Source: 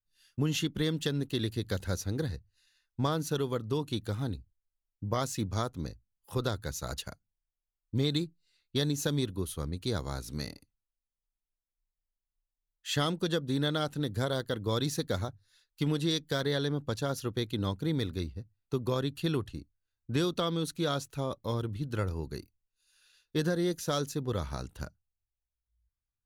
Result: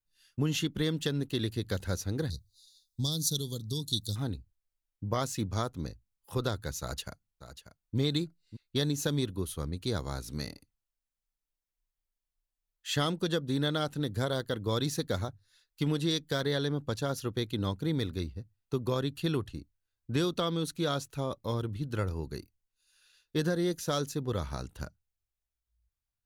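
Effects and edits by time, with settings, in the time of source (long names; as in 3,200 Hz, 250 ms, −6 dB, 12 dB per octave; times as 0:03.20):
0:02.30–0:04.16: drawn EQ curve 160 Hz 0 dB, 2,500 Hz −28 dB, 3,600 Hz +11 dB
0:06.81–0:07.97: delay throw 590 ms, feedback 10%, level −12 dB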